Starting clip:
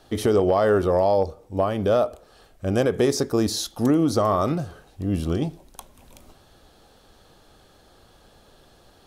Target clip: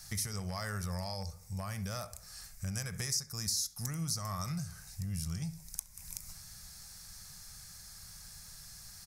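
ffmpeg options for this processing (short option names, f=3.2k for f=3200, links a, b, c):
-filter_complex "[0:a]firequalizer=gain_entry='entry(180,0);entry(270,-27);entry(910,-10);entry(2100,4);entry(3100,-10);entry(5100,14)':delay=0.05:min_phase=1,acompressor=threshold=-39dB:ratio=3,asplit=2[a][b];[b]adelay=67,lowpass=f=2k:p=1,volume=-14.5dB,asplit=2[c][d];[d]adelay=67,lowpass=f=2k:p=1,volume=0.38,asplit=2[e][f];[f]adelay=67,lowpass=f=2k:p=1,volume=0.38,asplit=2[g][h];[h]adelay=67,lowpass=f=2k:p=1,volume=0.38[i];[c][e][g][i]amix=inputs=4:normalize=0[j];[a][j]amix=inputs=2:normalize=0,volume=1dB"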